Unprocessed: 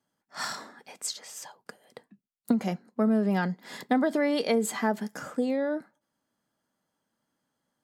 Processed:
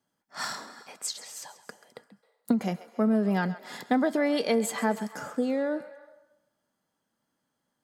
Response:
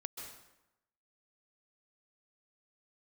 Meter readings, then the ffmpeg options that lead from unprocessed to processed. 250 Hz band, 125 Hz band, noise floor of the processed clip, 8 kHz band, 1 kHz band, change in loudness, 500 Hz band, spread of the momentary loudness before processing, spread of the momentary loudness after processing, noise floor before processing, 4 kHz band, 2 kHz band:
0.0 dB, 0.0 dB, -81 dBFS, 0.0 dB, 0.0 dB, 0.0 dB, 0.0 dB, 17 LU, 16 LU, -82 dBFS, 0.0 dB, 0.0 dB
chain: -filter_complex "[0:a]asplit=2[a][b];[b]highpass=f=490:w=0.5412,highpass=f=490:w=1.3066[c];[1:a]atrim=start_sample=2205,adelay=134[d];[c][d]afir=irnorm=-1:irlink=0,volume=-11dB[e];[a][e]amix=inputs=2:normalize=0"

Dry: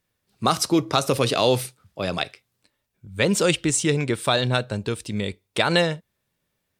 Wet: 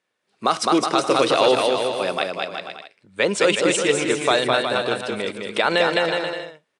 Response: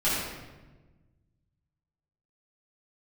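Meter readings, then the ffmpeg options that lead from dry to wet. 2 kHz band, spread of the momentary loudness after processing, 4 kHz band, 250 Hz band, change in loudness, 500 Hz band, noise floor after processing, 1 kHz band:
+5.0 dB, 11 LU, +2.0 dB, 0.0 dB, +2.5 dB, +4.5 dB, -75 dBFS, +5.0 dB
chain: -af "highpass=180,bass=f=250:g=-12,treble=f=4k:g=-8,aecho=1:1:210|367.5|485.6|574.2|640.7:0.631|0.398|0.251|0.158|0.1,aresample=22050,aresample=44100,alimiter=level_in=8.5dB:limit=-1dB:release=50:level=0:latency=1,volume=-4.5dB"

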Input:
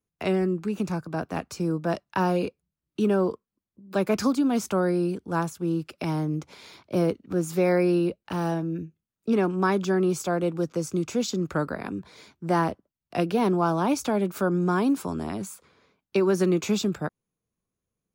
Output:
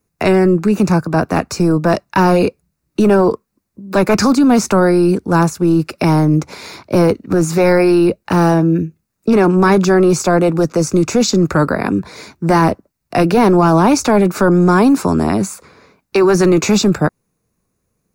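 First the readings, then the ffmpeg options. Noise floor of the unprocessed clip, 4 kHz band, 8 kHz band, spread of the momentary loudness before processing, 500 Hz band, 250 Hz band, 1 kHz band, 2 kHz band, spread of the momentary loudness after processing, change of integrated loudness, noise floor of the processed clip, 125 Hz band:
under -85 dBFS, +13.0 dB, +14.0 dB, 10 LU, +12.5 dB, +13.0 dB, +13.0 dB, +13.0 dB, 9 LU, +12.5 dB, -72 dBFS, +13.5 dB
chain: -filter_complex "[0:a]equalizer=f=3.2k:w=5:g=-12.5,apsyclip=22.5dB,acrossover=split=8000[a][b];[b]acompressor=threshold=-28dB:ratio=4:attack=1:release=60[c];[a][c]amix=inputs=2:normalize=0,volume=-6dB"

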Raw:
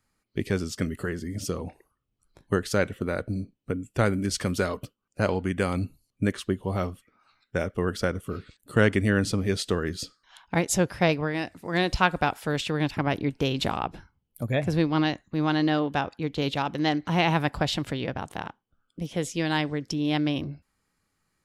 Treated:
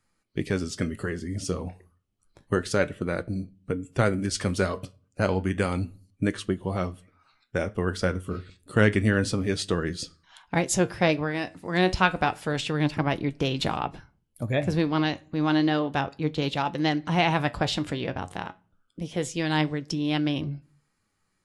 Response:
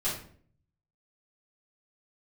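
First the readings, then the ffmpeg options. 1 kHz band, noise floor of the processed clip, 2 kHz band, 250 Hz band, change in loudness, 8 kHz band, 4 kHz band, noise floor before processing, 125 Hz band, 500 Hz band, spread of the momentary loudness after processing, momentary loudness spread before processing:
+0.5 dB, -73 dBFS, +0.5 dB, +0.5 dB, 0.0 dB, 0.0 dB, 0.0 dB, -78 dBFS, +0.5 dB, 0.0 dB, 11 LU, 11 LU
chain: -filter_complex "[0:a]flanger=delay=5.8:depth=5.2:regen=71:speed=0.3:shape=sinusoidal,asplit=2[a][b];[1:a]atrim=start_sample=2205,afade=t=out:st=0.38:d=0.01,atrim=end_sample=17199[c];[b][c]afir=irnorm=-1:irlink=0,volume=-28dB[d];[a][d]amix=inputs=2:normalize=0,volume=4.5dB" -ar 24000 -c:a aac -b:a 96k

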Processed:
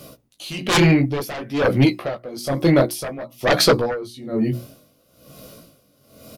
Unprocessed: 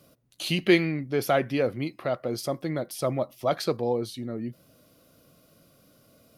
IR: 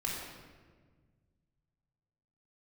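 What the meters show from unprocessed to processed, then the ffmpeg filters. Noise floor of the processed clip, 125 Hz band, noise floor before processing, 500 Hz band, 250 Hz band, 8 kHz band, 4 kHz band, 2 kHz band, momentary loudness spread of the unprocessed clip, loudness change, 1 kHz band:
-60 dBFS, +11.5 dB, -61 dBFS, +5.5 dB, +8.5 dB, +11.0 dB, +10.0 dB, +7.5 dB, 12 LU, +8.0 dB, +7.0 dB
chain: -filter_complex "[0:a]equalizer=f=1.6k:w=1.8:g=-4,flanger=delay=15.5:depth=7.8:speed=0.56,bandreject=f=60:t=h:w=6,bandreject=f=120:t=h:w=6,bandreject=f=180:t=h:w=6,bandreject=f=240:t=h:w=6,bandreject=f=300:t=h:w=6,bandreject=f=360:t=h:w=6,asplit=2[a][b];[b]adelay=14,volume=-14dB[c];[a][c]amix=inputs=2:normalize=0,aeval=exprs='0.316*sin(PI/2*5.62*val(0)/0.316)':c=same,aeval=exprs='val(0)*pow(10,-19*(0.5-0.5*cos(2*PI*1.1*n/s))/20)':c=same,volume=2.5dB"

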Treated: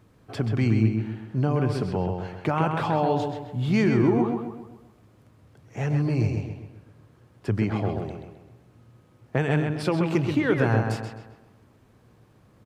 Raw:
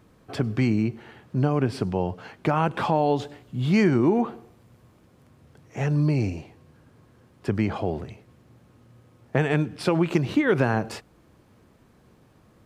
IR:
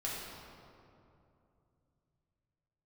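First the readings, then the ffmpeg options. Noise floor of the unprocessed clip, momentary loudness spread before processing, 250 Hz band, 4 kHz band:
-58 dBFS, 14 LU, -0.5 dB, -1.5 dB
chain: -filter_complex "[0:a]equalizer=f=110:t=o:w=0.2:g=9,asplit=2[a][b];[b]adelay=131,lowpass=f=3.9k:p=1,volume=-4.5dB,asplit=2[c][d];[d]adelay=131,lowpass=f=3.9k:p=1,volume=0.46,asplit=2[e][f];[f]adelay=131,lowpass=f=3.9k:p=1,volume=0.46,asplit=2[g][h];[h]adelay=131,lowpass=f=3.9k:p=1,volume=0.46,asplit=2[i][j];[j]adelay=131,lowpass=f=3.9k:p=1,volume=0.46,asplit=2[k][l];[l]adelay=131,lowpass=f=3.9k:p=1,volume=0.46[m];[c][e][g][i][k][m]amix=inputs=6:normalize=0[n];[a][n]amix=inputs=2:normalize=0,volume=-2.5dB"

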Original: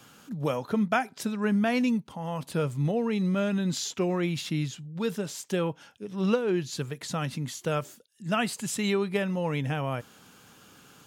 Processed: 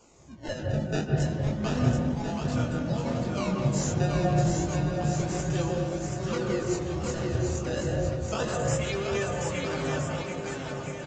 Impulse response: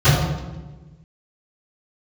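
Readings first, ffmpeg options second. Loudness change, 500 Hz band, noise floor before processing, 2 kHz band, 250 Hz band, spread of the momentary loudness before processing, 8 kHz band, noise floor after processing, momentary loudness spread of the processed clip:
+0.5 dB, +0.5 dB, -58 dBFS, -1.5 dB, -1.5 dB, 9 LU, +1.5 dB, -37 dBFS, 6 LU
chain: -filter_complex "[0:a]aemphasis=mode=production:type=bsi,aecho=1:1:3.4:0.81,acrossover=split=240|5700[a][b][c];[b]acrusher=samples=23:mix=1:aa=0.000001:lfo=1:lforange=36.8:lforate=0.3[d];[a][d][c]amix=inputs=3:normalize=0,flanger=delay=17.5:depth=7.5:speed=0.22,aresample=16000,aresample=44100,aecho=1:1:730|1314|1781|2155|2454:0.631|0.398|0.251|0.158|0.1,asplit=2[e][f];[1:a]atrim=start_sample=2205,lowpass=3.5k,adelay=133[g];[f][g]afir=irnorm=-1:irlink=0,volume=-25.5dB[h];[e][h]amix=inputs=2:normalize=0,aeval=exprs='0.299*(cos(1*acos(clip(val(0)/0.299,-1,1)))-cos(1*PI/2))+0.0168*(cos(2*acos(clip(val(0)/0.299,-1,1)))-cos(2*PI/2))':c=same,volume=-3dB"

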